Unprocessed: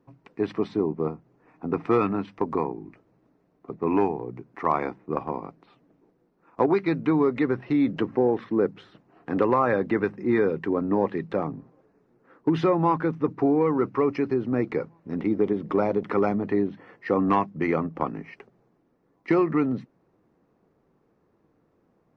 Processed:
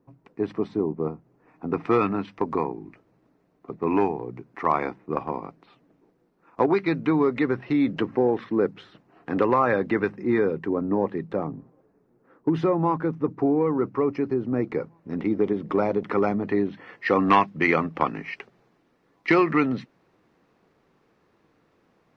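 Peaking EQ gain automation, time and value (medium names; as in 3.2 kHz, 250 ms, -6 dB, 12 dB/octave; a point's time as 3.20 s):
peaking EQ 3.3 kHz 2.8 oct
0.96 s -5.5 dB
1.88 s +3.5 dB
10.07 s +3.5 dB
10.80 s -5.5 dB
14.47 s -5.5 dB
15.16 s +2 dB
16.36 s +2 dB
17.12 s +13 dB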